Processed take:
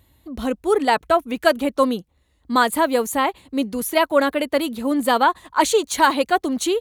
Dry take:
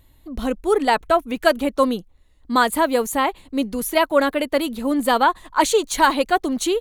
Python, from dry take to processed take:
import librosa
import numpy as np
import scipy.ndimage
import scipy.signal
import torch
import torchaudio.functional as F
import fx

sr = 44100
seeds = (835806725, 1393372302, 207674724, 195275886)

y = scipy.signal.sosfilt(scipy.signal.butter(4, 52.0, 'highpass', fs=sr, output='sos'), x)